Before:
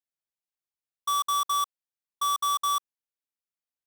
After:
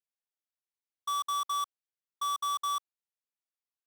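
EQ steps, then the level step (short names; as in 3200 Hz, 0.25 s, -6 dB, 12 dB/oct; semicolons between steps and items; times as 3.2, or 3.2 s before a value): HPF 140 Hz 12 dB/oct; bell 200 Hz -6.5 dB 0.82 oct; high shelf 9300 Hz -6.5 dB; -5.0 dB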